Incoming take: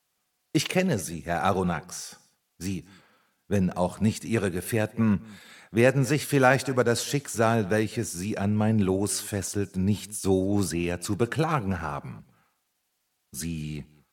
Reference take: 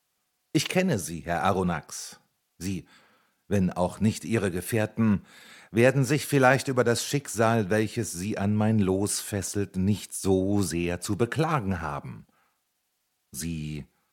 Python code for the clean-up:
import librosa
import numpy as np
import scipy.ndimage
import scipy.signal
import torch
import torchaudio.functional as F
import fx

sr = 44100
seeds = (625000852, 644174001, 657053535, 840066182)

y = fx.fix_echo_inverse(x, sr, delay_ms=206, level_db=-24.0)